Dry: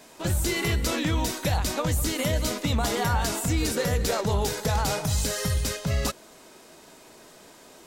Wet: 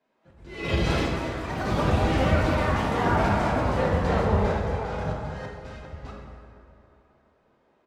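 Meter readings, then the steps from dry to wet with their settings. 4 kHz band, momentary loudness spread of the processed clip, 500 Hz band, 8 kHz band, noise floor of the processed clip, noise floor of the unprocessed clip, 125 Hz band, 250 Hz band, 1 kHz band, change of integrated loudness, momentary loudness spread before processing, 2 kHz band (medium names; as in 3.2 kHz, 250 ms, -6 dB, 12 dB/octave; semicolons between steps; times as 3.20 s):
-6.5 dB, 18 LU, +2.5 dB, -17.5 dB, -66 dBFS, -51 dBFS, +0.5 dB, +2.0 dB, +4.0 dB, +1.0 dB, 2 LU, +1.0 dB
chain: low-pass 2.1 kHz 12 dB/octave; hum notches 60/120/180/240/300/360/420 Hz; slow attack 347 ms; doubling 50 ms -11.5 dB; ever faster or slower copies 185 ms, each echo +4 st, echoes 3; plate-style reverb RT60 4.1 s, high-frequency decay 0.5×, DRR -1.5 dB; three bands expanded up and down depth 70%; trim -1.5 dB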